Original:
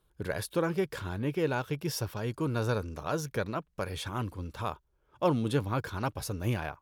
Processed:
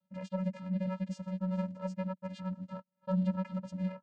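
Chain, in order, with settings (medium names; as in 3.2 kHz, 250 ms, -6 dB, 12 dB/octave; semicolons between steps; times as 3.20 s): vocoder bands 8, square 188 Hz; granular stretch 0.59×, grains 103 ms; trim -1 dB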